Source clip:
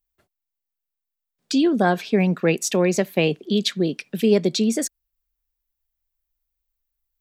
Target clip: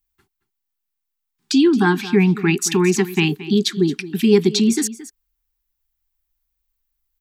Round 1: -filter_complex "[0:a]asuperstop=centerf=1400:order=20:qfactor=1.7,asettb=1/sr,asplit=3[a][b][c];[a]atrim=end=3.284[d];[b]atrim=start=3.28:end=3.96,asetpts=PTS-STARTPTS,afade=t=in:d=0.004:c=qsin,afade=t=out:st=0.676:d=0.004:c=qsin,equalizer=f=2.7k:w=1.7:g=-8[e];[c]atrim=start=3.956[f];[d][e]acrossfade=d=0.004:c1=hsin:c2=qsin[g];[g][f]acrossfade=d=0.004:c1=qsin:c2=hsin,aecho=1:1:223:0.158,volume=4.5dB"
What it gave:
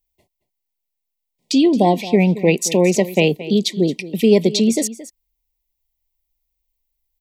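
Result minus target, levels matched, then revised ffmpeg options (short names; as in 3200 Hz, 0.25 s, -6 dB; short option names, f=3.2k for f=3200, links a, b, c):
1000 Hz band +3.0 dB
-filter_complex "[0:a]asuperstop=centerf=570:order=20:qfactor=1.7,asettb=1/sr,asplit=3[a][b][c];[a]atrim=end=3.284[d];[b]atrim=start=3.28:end=3.96,asetpts=PTS-STARTPTS,afade=t=in:d=0.004:c=qsin,afade=t=out:st=0.676:d=0.004:c=qsin,equalizer=f=2.7k:w=1.7:g=-8[e];[c]atrim=start=3.956[f];[d][e]acrossfade=d=0.004:c1=hsin:c2=qsin[g];[g][f]acrossfade=d=0.004:c1=qsin:c2=hsin,aecho=1:1:223:0.158,volume=4.5dB"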